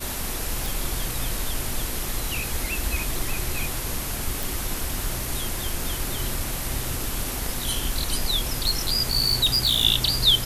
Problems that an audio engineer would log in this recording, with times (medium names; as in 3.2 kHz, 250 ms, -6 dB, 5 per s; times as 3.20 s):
0.66 s: pop
4.43 s: pop
8.53–9.85 s: clipped -15.5 dBFS